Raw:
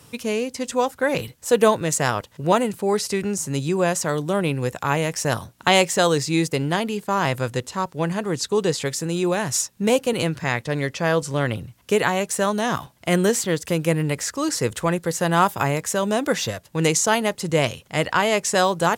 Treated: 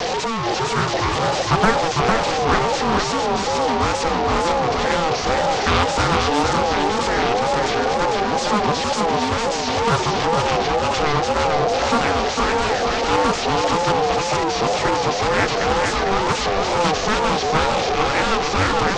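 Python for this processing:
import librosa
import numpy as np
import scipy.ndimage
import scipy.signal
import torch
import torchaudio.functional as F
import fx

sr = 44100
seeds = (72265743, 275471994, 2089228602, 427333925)

p1 = fx.delta_mod(x, sr, bps=32000, step_db=-15.5)
p2 = fx.low_shelf(p1, sr, hz=280.0, db=6.5)
p3 = p2 * np.sin(2.0 * np.pi * 640.0 * np.arange(len(p2)) / sr)
p4 = fx.wow_flutter(p3, sr, seeds[0], rate_hz=2.1, depth_cents=150.0)
p5 = p4 + fx.echo_feedback(p4, sr, ms=453, feedback_pct=35, wet_db=-4.0, dry=0)
y = fx.doppler_dist(p5, sr, depth_ms=0.44)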